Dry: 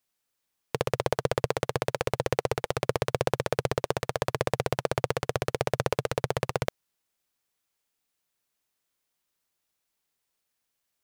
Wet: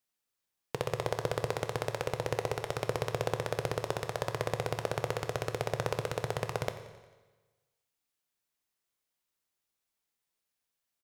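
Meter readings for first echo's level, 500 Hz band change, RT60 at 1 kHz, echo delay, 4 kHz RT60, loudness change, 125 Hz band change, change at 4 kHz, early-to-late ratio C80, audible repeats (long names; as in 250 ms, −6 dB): −17.0 dB, −5.5 dB, 1.2 s, 89 ms, 1.2 s, −5.0 dB, −4.0 dB, −5.0 dB, 11.0 dB, 4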